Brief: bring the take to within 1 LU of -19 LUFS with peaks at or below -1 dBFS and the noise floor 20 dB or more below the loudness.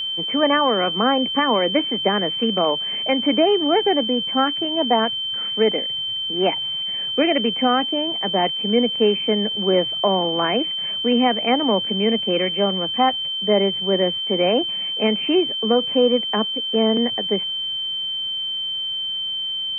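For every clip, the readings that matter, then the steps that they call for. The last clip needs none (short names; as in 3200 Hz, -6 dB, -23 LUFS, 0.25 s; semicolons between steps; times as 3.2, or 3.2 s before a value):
steady tone 3100 Hz; tone level -23 dBFS; loudness -19.5 LUFS; peak -5.0 dBFS; loudness target -19.0 LUFS
-> notch 3100 Hz, Q 30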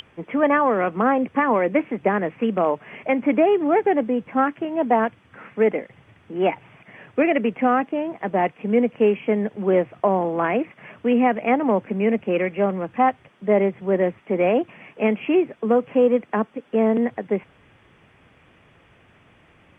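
steady tone none; loudness -21.5 LUFS; peak -6.0 dBFS; loudness target -19.0 LUFS
-> gain +2.5 dB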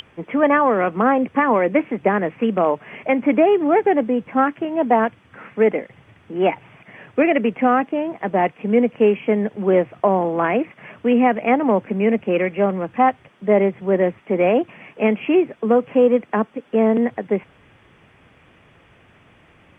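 loudness -19.0 LUFS; peak -3.5 dBFS; noise floor -53 dBFS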